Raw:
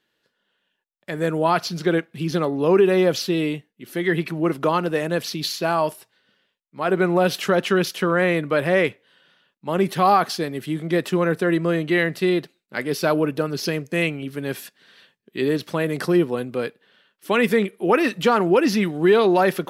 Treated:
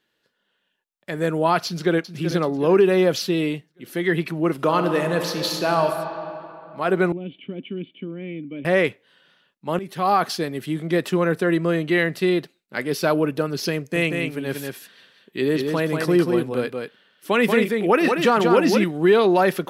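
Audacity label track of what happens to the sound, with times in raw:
1.660000	2.080000	delay throw 380 ms, feedback 45%, level −10.5 dB
4.540000	5.850000	thrown reverb, RT60 3 s, DRR 4.5 dB
7.120000	8.650000	formant resonators in series i
9.790000	10.260000	fade in, from −17 dB
13.770000	18.840000	single-tap delay 185 ms −4.5 dB

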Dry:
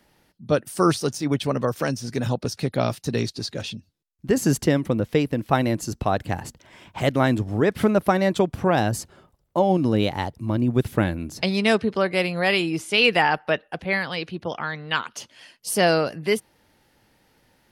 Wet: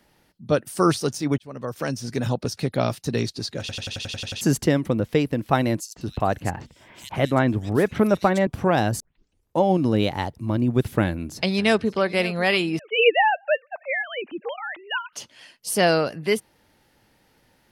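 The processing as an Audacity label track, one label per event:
1.380000	2.020000	fade in
3.600000	3.600000	stutter in place 0.09 s, 9 plays
5.800000	8.470000	multiband delay without the direct sound highs, lows 160 ms, split 3,600 Hz
9.000000	9.000000	tape start 0.61 s
11.030000	12.010000	delay throw 550 ms, feedback 40%, level −17.5 dB
12.790000	15.130000	three sine waves on the formant tracks

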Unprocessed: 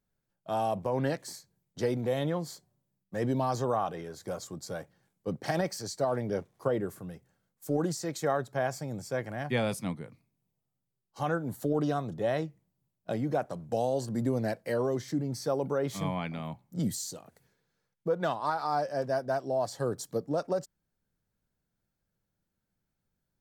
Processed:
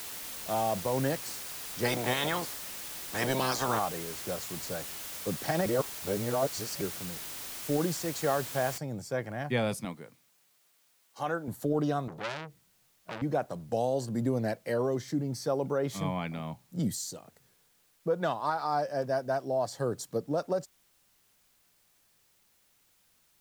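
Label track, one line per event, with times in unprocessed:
1.840000	3.780000	ceiling on every frequency bin ceiling under each frame's peak by 24 dB
5.660000	6.810000	reverse
8.780000	8.780000	noise floor change −41 dB −68 dB
9.850000	11.480000	high-pass filter 360 Hz 6 dB per octave
12.080000	13.220000	saturating transformer saturates under 2,900 Hz

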